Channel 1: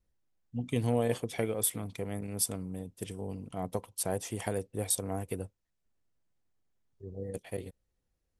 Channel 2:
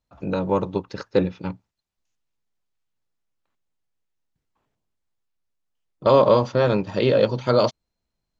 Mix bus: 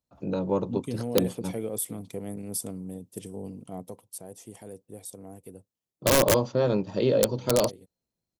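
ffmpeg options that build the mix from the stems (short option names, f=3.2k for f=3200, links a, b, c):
-filter_complex "[0:a]alimiter=limit=-22.5dB:level=0:latency=1:release=27,acontrast=79,highpass=150,adelay=150,volume=-2.5dB,afade=t=out:st=3.5:d=0.7:silence=0.354813[a];[1:a]highpass=f=170:p=1,aeval=exprs='(mod(2.51*val(0)+1,2)-1)/2.51':c=same,volume=-0.5dB[b];[a][b]amix=inputs=2:normalize=0,equalizer=f=1.8k:w=0.48:g=-11"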